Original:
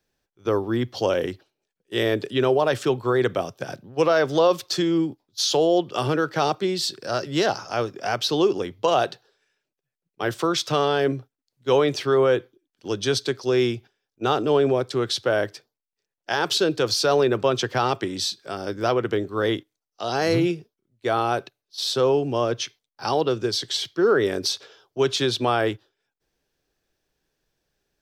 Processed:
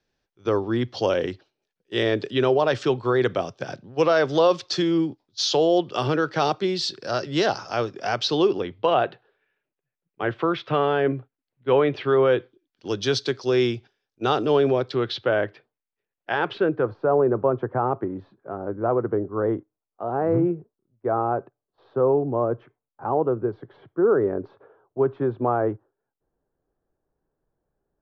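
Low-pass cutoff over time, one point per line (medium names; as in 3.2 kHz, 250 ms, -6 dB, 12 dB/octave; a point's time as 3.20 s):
low-pass 24 dB/octave
8.24 s 5.9 kHz
9.08 s 2.7 kHz
11.83 s 2.7 kHz
12.91 s 5.9 kHz
14.59 s 5.9 kHz
15.46 s 2.8 kHz
16.42 s 2.8 kHz
16.98 s 1.2 kHz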